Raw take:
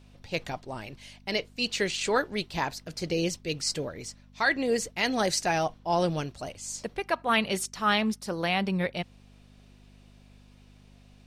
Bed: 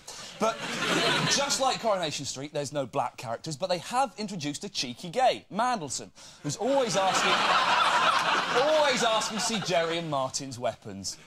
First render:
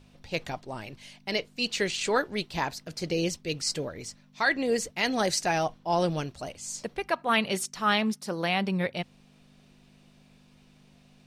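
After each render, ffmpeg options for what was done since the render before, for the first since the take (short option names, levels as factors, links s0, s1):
-af "bandreject=f=50:t=h:w=4,bandreject=f=100:t=h:w=4"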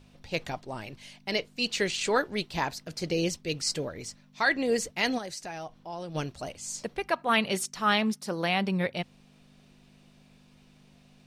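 -filter_complex "[0:a]asplit=3[s0][s1][s2];[s0]afade=t=out:st=5.17:d=0.02[s3];[s1]acompressor=threshold=0.00562:ratio=2:attack=3.2:release=140:knee=1:detection=peak,afade=t=in:st=5.17:d=0.02,afade=t=out:st=6.14:d=0.02[s4];[s2]afade=t=in:st=6.14:d=0.02[s5];[s3][s4][s5]amix=inputs=3:normalize=0"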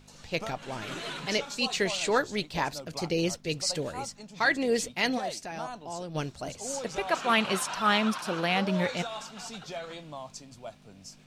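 -filter_complex "[1:a]volume=0.237[s0];[0:a][s0]amix=inputs=2:normalize=0"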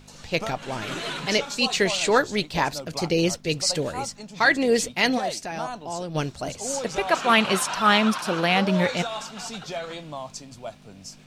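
-af "volume=2"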